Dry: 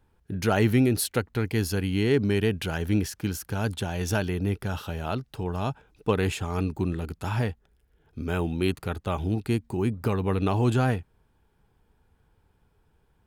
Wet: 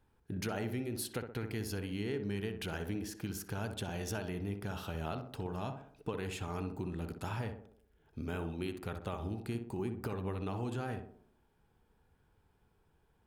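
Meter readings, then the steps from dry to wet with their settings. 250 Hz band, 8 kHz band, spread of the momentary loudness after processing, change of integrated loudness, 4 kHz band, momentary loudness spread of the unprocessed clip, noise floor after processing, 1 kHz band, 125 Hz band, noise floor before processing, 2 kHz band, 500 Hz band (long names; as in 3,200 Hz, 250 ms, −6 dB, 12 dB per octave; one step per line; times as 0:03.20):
−12.5 dB, −10.5 dB, 4 LU, −12.0 dB, −10.5 dB, 9 LU, −72 dBFS, −11.0 dB, −13.0 dB, −67 dBFS, −11.5 dB, −12.0 dB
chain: low-shelf EQ 150 Hz −3 dB
downward compressor, threshold −31 dBFS, peak gain reduction 12.5 dB
tape delay 62 ms, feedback 59%, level −4.5 dB, low-pass 1,200 Hz
level −4.5 dB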